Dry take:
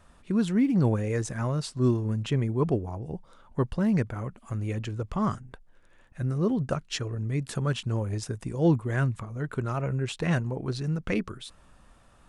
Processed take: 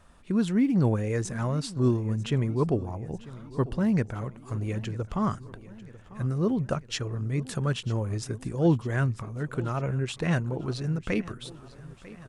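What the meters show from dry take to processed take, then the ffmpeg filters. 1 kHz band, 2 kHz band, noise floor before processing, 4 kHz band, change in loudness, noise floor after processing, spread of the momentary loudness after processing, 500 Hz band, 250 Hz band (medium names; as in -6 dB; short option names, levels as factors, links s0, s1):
0.0 dB, 0.0 dB, -57 dBFS, 0.0 dB, 0.0 dB, -50 dBFS, 15 LU, 0.0 dB, 0.0 dB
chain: -af "aecho=1:1:946|1892|2838|3784|4730:0.119|0.0689|0.04|0.0232|0.0134"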